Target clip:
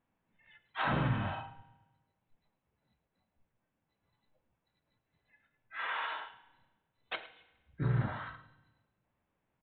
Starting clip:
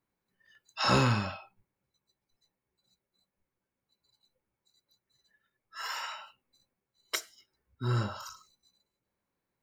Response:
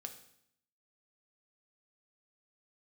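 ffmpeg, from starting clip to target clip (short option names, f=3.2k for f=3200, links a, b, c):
-filter_complex "[0:a]highshelf=f=2.5k:g=-9,aecho=1:1:1.3:0.37,acompressor=threshold=-33dB:ratio=3,asoftclip=type=tanh:threshold=-28dB,asplit=4[a][b][c][d];[b]asetrate=22050,aresample=44100,atempo=2,volume=-16dB[e];[c]asetrate=52444,aresample=44100,atempo=0.840896,volume=-1dB[f];[d]asetrate=66075,aresample=44100,atempo=0.66742,volume=-9dB[g];[a][e][f][g]amix=inputs=4:normalize=0,aecho=1:1:106:0.133,asplit=2[h][i];[1:a]atrim=start_sample=2205,asetrate=28224,aresample=44100[j];[i][j]afir=irnorm=-1:irlink=0,volume=-3dB[k];[h][k]amix=inputs=2:normalize=0,aresample=8000,aresample=44100,volume=-2dB"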